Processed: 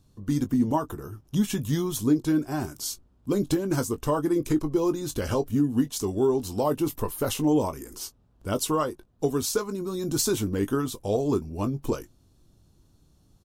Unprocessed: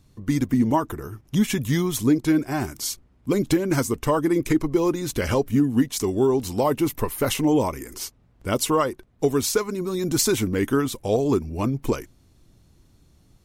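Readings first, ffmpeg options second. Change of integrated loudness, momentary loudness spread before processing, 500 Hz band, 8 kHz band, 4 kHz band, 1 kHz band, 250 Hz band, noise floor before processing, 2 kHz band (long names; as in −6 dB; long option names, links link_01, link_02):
−3.5 dB, 8 LU, −3.5 dB, −4.0 dB, −4.5 dB, −4.5 dB, −3.5 dB, −58 dBFS, −8.0 dB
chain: -filter_complex "[0:a]equalizer=frequency=2100:width_type=o:width=0.52:gain=-10.5,asplit=2[link_01][link_02];[link_02]adelay=20,volume=-10.5dB[link_03];[link_01][link_03]amix=inputs=2:normalize=0,volume=-4dB"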